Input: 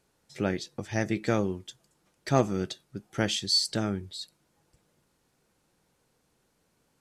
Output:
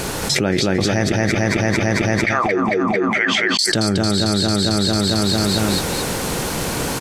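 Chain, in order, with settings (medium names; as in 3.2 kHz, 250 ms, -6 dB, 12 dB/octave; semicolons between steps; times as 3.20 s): 1.12–3.59 s: wah-wah 1.1 Hz 210–2200 Hz, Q 11; feedback delay 224 ms, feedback 57%, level -4 dB; level flattener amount 100%; trim +7 dB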